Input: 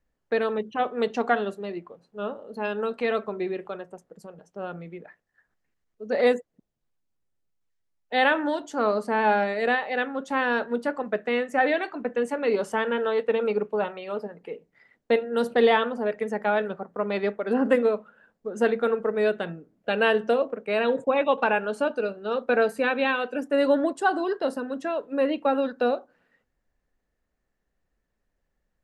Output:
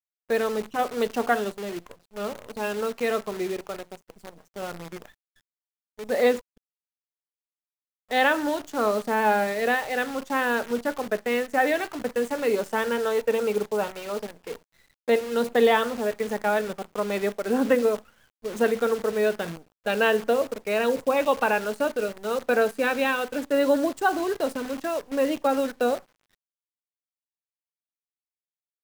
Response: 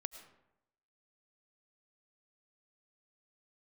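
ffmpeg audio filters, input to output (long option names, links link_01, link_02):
-af "acrusher=bits=7:dc=4:mix=0:aa=0.000001,atempo=1"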